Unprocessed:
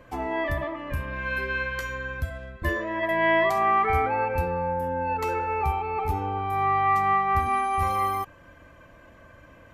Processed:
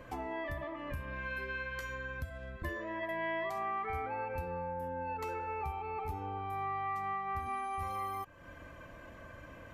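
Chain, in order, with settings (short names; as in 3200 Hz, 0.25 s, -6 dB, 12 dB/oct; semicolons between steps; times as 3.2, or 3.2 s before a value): compressor 2.5:1, threshold -42 dBFS, peak gain reduction 15.5 dB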